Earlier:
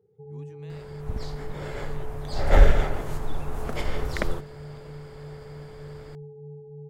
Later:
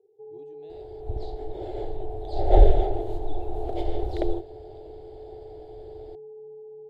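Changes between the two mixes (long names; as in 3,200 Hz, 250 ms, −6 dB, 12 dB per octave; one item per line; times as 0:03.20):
first sound: add high-pass filter 340 Hz 12 dB per octave
master: add drawn EQ curve 110 Hz 0 dB, 210 Hz −23 dB, 350 Hz +11 dB, 530 Hz −2 dB, 750 Hz +8 dB, 1,100 Hz −21 dB, 2,300 Hz −16 dB, 3,800 Hz −3 dB, 5,500 Hz −18 dB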